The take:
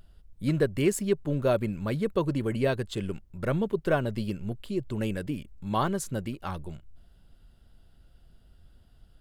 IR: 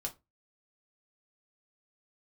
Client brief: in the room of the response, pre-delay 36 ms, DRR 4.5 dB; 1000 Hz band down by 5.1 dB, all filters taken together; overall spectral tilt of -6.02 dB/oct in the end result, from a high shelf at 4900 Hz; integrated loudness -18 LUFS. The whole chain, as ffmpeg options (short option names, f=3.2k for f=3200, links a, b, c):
-filter_complex "[0:a]equalizer=f=1k:t=o:g=-7,highshelf=f=4.9k:g=3.5,asplit=2[a][b];[1:a]atrim=start_sample=2205,adelay=36[c];[b][c]afir=irnorm=-1:irlink=0,volume=-4.5dB[d];[a][d]amix=inputs=2:normalize=0,volume=11dB"